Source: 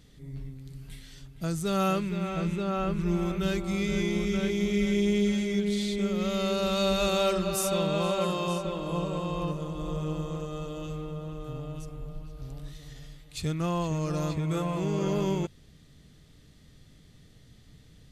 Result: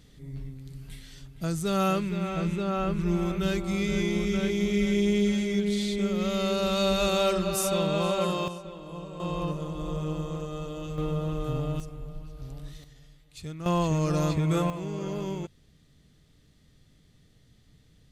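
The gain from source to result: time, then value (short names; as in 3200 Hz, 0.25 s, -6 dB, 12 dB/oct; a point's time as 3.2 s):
+1 dB
from 8.48 s -9 dB
from 9.2 s +0.5 dB
from 10.98 s +7.5 dB
from 11.8 s 0 dB
from 12.84 s -8 dB
from 13.66 s +4 dB
from 14.7 s -5 dB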